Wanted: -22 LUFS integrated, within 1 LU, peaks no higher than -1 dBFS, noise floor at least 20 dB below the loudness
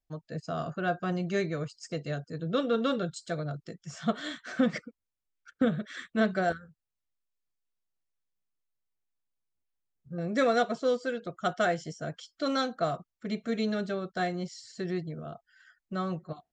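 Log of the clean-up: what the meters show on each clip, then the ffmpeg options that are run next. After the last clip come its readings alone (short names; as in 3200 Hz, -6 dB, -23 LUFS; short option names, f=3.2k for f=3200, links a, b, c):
loudness -32.0 LUFS; peak -14.5 dBFS; loudness target -22.0 LUFS
-> -af "volume=10dB"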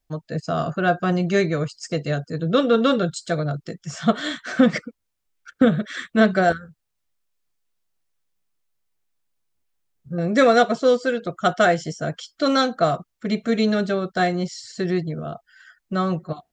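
loudness -22.0 LUFS; peak -4.5 dBFS; noise floor -77 dBFS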